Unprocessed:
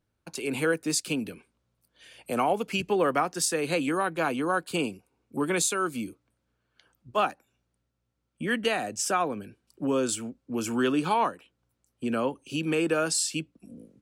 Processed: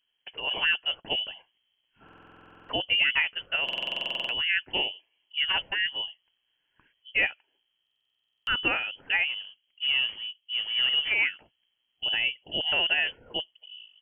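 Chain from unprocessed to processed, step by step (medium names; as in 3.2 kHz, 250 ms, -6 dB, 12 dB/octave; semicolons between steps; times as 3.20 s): 9.27–11.19 s: median filter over 25 samples; frequency inversion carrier 3.2 kHz; buffer glitch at 2.04/3.64/7.82 s, samples 2048, times 13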